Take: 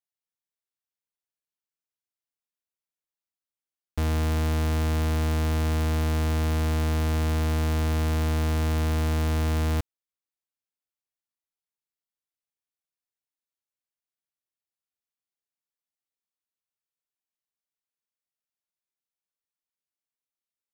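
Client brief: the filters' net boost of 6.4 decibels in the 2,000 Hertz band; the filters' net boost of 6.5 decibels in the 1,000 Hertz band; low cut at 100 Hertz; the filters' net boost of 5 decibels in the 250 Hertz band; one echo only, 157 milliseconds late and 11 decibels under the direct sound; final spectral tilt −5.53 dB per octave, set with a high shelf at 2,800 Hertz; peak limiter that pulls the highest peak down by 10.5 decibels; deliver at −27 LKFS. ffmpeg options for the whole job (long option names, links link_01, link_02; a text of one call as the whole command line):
ffmpeg -i in.wav -af "highpass=100,equalizer=frequency=250:width_type=o:gain=6,equalizer=frequency=1000:width_type=o:gain=6.5,equalizer=frequency=2000:width_type=o:gain=7.5,highshelf=frequency=2800:gain=-4.5,alimiter=limit=-23dB:level=0:latency=1,aecho=1:1:157:0.282,volume=8.5dB" out.wav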